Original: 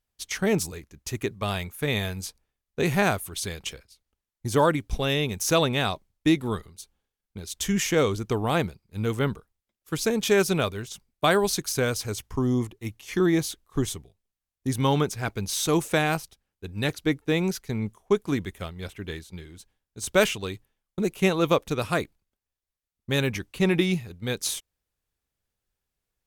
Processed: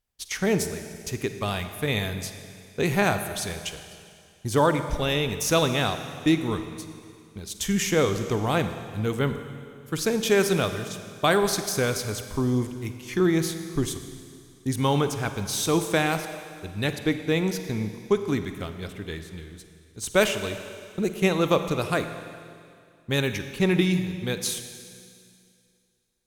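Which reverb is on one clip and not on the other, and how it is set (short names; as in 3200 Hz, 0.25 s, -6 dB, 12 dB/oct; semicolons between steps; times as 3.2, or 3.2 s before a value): Schroeder reverb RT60 2.3 s, DRR 8.5 dB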